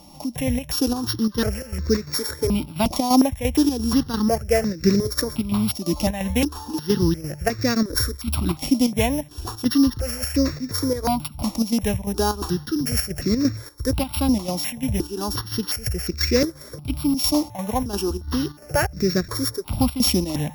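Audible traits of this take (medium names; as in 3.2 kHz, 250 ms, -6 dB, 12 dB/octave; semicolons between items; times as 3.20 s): a buzz of ramps at a fixed pitch in blocks of 8 samples; chopped level 2.9 Hz, depth 60%, duty 70%; notches that jump at a steady rate 2.8 Hz 430–3100 Hz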